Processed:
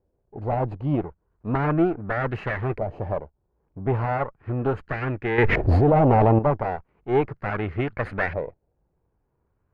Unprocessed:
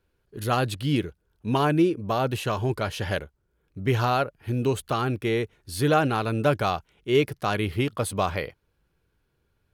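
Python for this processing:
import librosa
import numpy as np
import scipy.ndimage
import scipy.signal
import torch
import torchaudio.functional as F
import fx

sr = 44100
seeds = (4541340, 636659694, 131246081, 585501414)

y = fx.lower_of_two(x, sr, delay_ms=0.42)
y = fx.filter_lfo_lowpass(y, sr, shape='saw_up', hz=0.36, low_hz=660.0, high_hz=1900.0, q=2.4)
y = fx.env_flatten(y, sr, amount_pct=100, at=(5.38, 6.39))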